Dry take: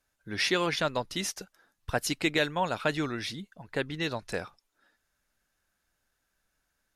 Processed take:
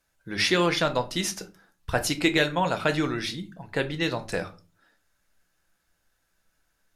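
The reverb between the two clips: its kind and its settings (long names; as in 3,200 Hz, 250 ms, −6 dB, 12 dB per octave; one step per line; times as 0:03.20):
rectangular room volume 160 cubic metres, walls furnished, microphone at 0.71 metres
level +3.5 dB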